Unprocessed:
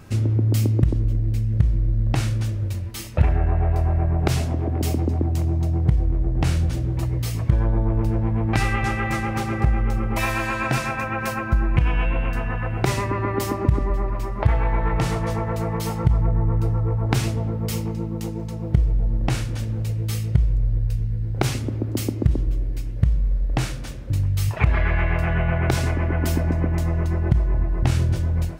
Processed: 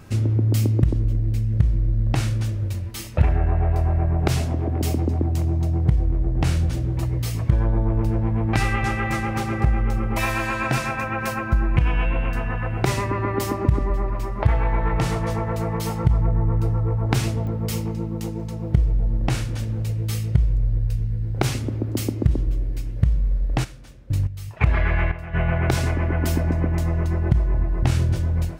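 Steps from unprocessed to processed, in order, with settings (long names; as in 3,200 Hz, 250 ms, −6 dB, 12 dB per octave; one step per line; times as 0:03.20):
0:23.63–0:25.33: gate pattern "x..xxx....." 89 BPM −12 dB
digital clicks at 0:17.47, −25 dBFS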